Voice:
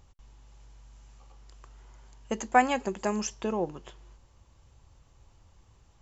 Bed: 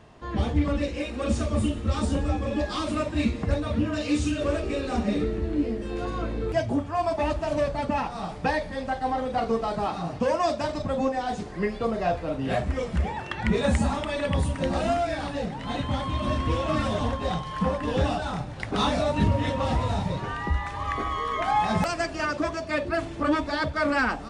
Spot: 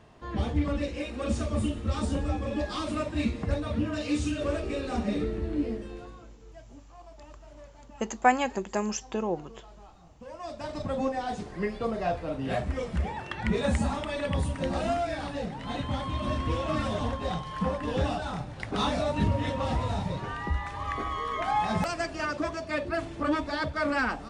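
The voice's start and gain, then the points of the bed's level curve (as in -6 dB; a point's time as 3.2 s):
5.70 s, 0.0 dB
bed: 5.75 s -3.5 dB
6.38 s -25.5 dB
10.11 s -25.5 dB
10.81 s -3.5 dB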